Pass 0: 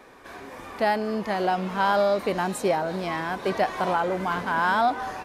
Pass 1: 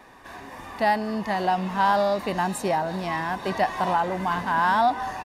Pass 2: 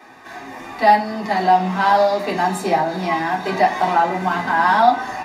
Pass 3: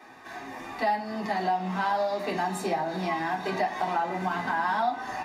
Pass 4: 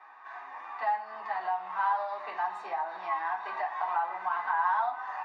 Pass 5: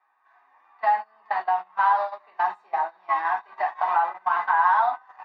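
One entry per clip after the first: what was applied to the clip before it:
comb 1.1 ms, depth 44%
reverb RT60 0.40 s, pre-delay 3 ms, DRR -3.5 dB
compressor 2.5:1, threshold -21 dBFS, peak gain reduction 9.5 dB; gain -5.5 dB
ladder band-pass 1200 Hz, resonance 50%; gain +7.5 dB
gate -33 dBFS, range -24 dB; gain +8 dB

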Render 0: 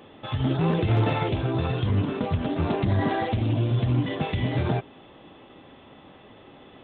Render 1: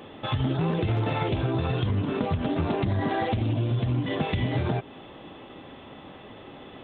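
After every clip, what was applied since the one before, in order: compressor, threshold -27 dBFS, peak gain reduction 9.5 dB; gain +4.5 dB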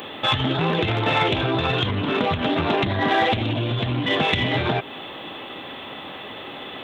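in parallel at -10 dB: soft clip -29 dBFS, distortion -9 dB; on the sum: tilt +3 dB/oct; gain +8 dB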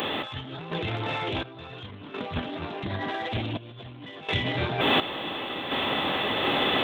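limiter -16 dBFS, peak gain reduction 10 dB; negative-ratio compressor -31 dBFS, ratio -0.5; random-step tremolo 1.4 Hz, depth 80%; gain +8.5 dB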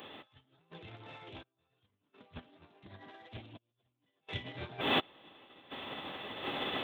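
upward expander 2.5:1, over -44 dBFS; gain -6 dB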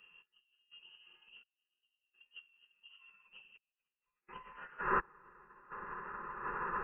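band-pass sweep 210 Hz -> 1600 Hz, 2.84–4.95; inverted band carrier 3000 Hz; fixed phaser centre 450 Hz, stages 8; gain +10.5 dB

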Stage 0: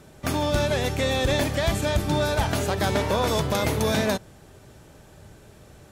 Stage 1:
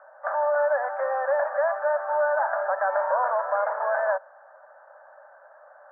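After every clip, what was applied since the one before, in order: Chebyshev band-pass 550–1700 Hz, order 5; in parallel at +2 dB: limiter -27 dBFS, peak gain reduction 11 dB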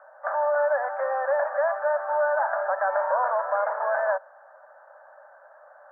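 tone controls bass -7 dB, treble -1 dB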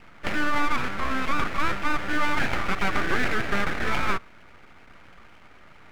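full-wave rectifier; gain +3 dB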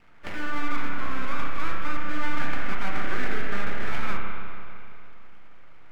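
reverb RT60 2.6 s, pre-delay 31 ms, DRR 0 dB; gain -8.5 dB

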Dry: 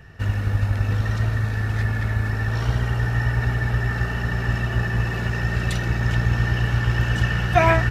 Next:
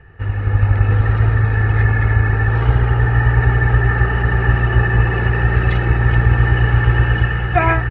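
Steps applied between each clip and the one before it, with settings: LPF 2500 Hz 24 dB/oct; AGC gain up to 9 dB; comb 2.4 ms, depth 49%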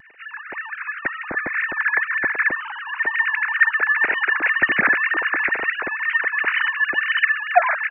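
sine-wave speech; high shelf 2500 Hz +9 dB; vibrato 2 Hz 43 cents; gain -10.5 dB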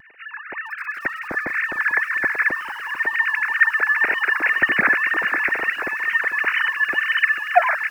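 lo-fi delay 0.445 s, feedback 35%, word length 6-bit, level -14 dB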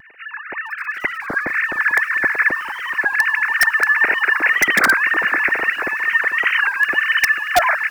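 in parallel at -3.5 dB: wrapped overs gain 9 dB; on the sum: record warp 33 1/3 rpm, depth 160 cents; gain -1 dB

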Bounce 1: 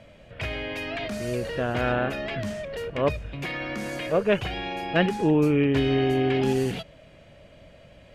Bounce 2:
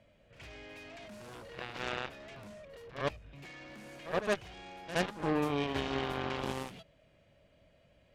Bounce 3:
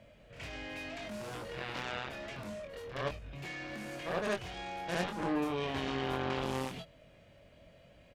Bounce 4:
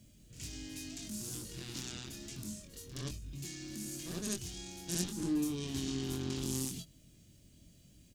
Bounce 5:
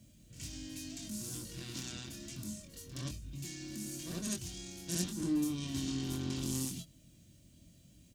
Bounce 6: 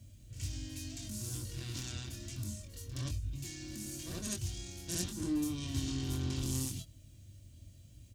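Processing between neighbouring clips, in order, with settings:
added harmonics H 3 -21 dB, 5 -30 dB, 7 -14 dB, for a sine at -9.5 dBFS; reverse echo 70 ms -13 dB; gain -9 dB
limiter -30 dBFS, peak gain reduction 11 dB; doubler 23 ms -5 dB; gain +5 dB
EQ curve 340 Hz 0 dB, 540 Hz -21 dB, 2200 Hz -14 dB, 6700 Hz +13 dB; gain +1.5 dB
notch comb 420 Hz; gain +1 dB
resonant low shelf 130 Hz +6.5 dB, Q 3

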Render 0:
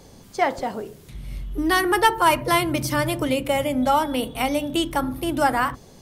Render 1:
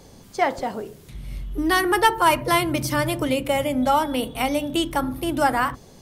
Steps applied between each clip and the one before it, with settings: nothing audible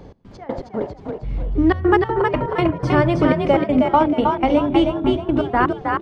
step gate "x.x.x.x.x.xxx" 122 bpm -24 dB; tape spacing loss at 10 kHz 38 dB; frequency-shifting echo 0.315 s, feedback 38%, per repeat +39 Hz, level -4 dB; gain +8.5 dB

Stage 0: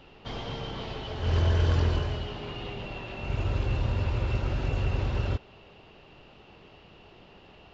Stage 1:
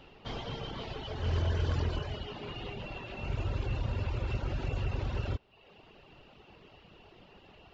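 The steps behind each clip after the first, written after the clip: reverb removal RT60 0.77 s; in parallel at -1 dB: limiter -26 dBFS, peak gain reduction 9.5 dB; on the sum: gain -7 dB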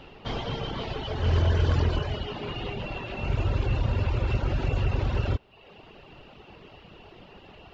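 high shelf 5000 Hz -4.5 dB; gain +7.5 dB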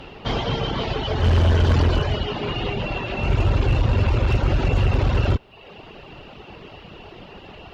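one-sided clip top -23 dBFS, bottom -18.5 dBFS; gain +8 dB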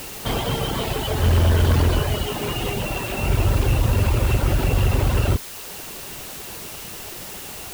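requantised 6-bit, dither triangular

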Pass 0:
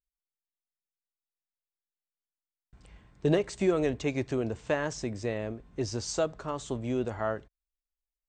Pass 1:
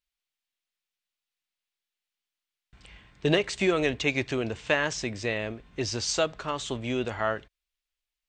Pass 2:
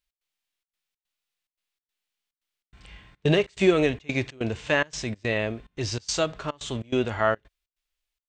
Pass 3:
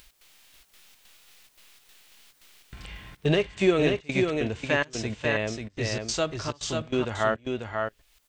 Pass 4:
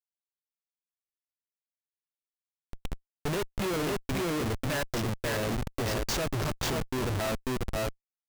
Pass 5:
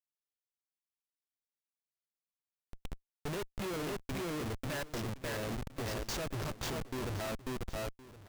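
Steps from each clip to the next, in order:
bell 2900 Hz +13 dB 2.1 oct
harmonic-percussive split harmonic +8 dB; step gate "x.xxxx.x" 143 bpm -24 dB; gain -2 dB
upward compressor, threshold -30 dBFS; echo 0.541 s -4.5 dB; gain -2 dB
Schmitt trigger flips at -32 dBFS
echo 1.066 s -17 dB; gain -7.5 dB

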